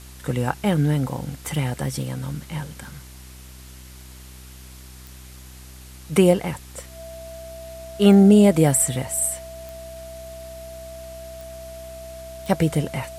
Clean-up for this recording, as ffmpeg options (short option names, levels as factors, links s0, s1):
-af "adeclick=t=4,bandreject=f=63.6:t=h:w=4,bandreject=f=127.2:t=h:w=4,bandreject=f=190.8:t=h:w=4,bandreject=f=254.4:t=h:w=4,bandreject=f=318:t=h:w=4,bandreject=f=381.6:t=h:w=4,bandreject=f=660:w=30,afftdn=nr=24:nf=-42"